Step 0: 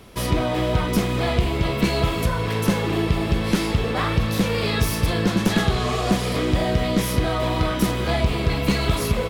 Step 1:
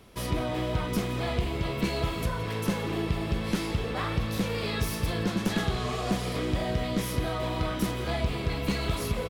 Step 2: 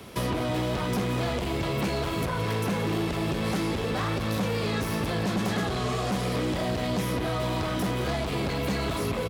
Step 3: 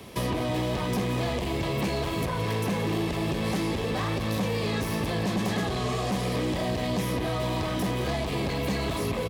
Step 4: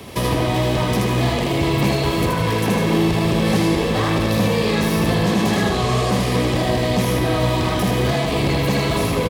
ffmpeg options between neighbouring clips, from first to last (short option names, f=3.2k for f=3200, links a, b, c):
-af "aecho=1:1:170:0.158,volume=-8dB"
-filter_complex "[0:a]aeval=exprs='0.158*sin(PI/2*2.51*val(0)/0.158)':c=same,acrossover=split=240|1900|4500[a][b][c][d];[a]acompressor=threshold=-26dB:ratio=4[e];[b]acompressor=threshold=-28dB:ratio=4[f];[c]acompressor=threshold=-41dB:ratio=4[g];[d]acompressor=threshold=-42dB:ratio=4[h];[e][f][g][h]amix=inputs=4:normalize=0,highpass=81,volume=-1.5dB"
-af "bandreject=f=1.4k:w=5.9"
-af "aecho=1:1:78.72|151.6:0.708|0.282,volume=7.5dB"